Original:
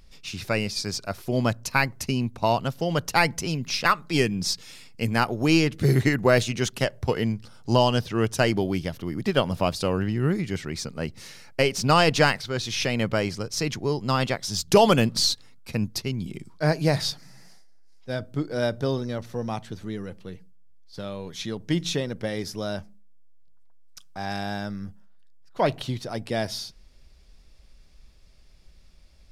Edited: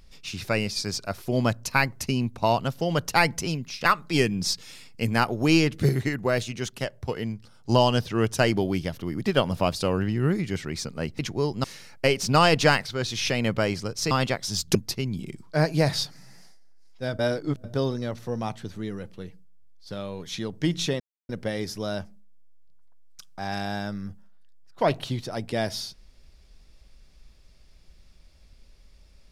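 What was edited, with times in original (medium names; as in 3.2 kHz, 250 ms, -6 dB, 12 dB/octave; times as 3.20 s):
3.49–3.81 s: fade out linear, to -15.5 dB
5.89–7.69 s: gain -5.5 dB
13.66–14.11 s: move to 11.19 s
14.75–15.82 s: delete
18.26–18.71 s: reverse
22.07 s: insert silence 0.29 s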